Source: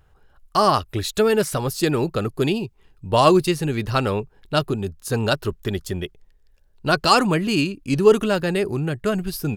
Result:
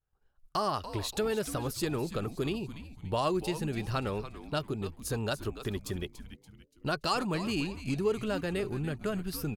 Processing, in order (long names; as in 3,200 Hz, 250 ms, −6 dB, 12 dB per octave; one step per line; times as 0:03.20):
downward expander −43 dBFS
downward compressor 2 to 1, threshold −29 dBFS, peak gain reduction 11.5 dB
echo with shifted repeats 287 ms, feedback 40%, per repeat −150 Hz, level −12 dB
level −5 dB